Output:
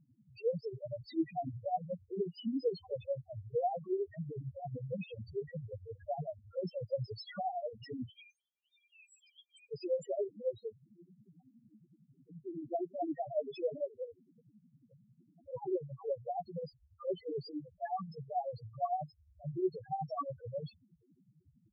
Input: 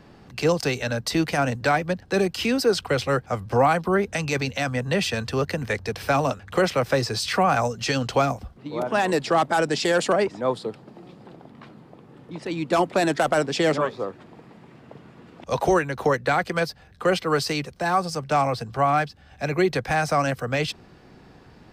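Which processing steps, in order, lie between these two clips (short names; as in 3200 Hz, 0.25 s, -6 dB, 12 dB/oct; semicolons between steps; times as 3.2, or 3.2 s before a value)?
8.09–9.72 rippled Chebyshev high-pass 2300 Hz, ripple 9 dB; loudest bins only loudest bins 1; tremolo triangle 11 Hz, depth 80%; gain -2.5 dB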